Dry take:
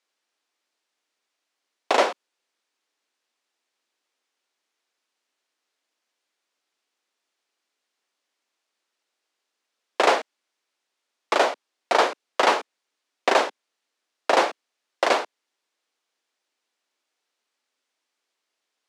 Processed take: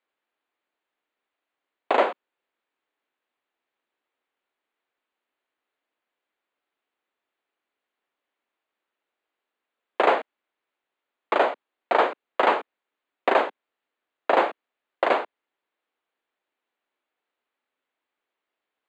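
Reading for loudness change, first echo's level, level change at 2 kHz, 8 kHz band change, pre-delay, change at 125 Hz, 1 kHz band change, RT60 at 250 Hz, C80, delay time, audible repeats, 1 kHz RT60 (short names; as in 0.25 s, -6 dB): -1.0 dB, none, -2.0 dB, under -20 dB, none, n/a, -0.5 dB, none, none, none, none, none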